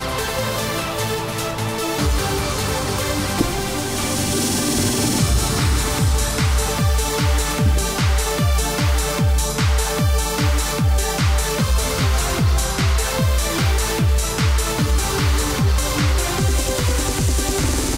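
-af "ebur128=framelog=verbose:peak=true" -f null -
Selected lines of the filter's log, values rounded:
Integrated loudness:
  I:         -19.3 LUFS
  Threshold: -29.3 LUFS
Loudness range:
  LRA:         2.4 LU
  Threshold: -39.1 LUFS
  LRA low:   -20.9 LUFS
  LRA high:  -18.5 LUFS
True peak:
  Peak:       -4.9 dBFS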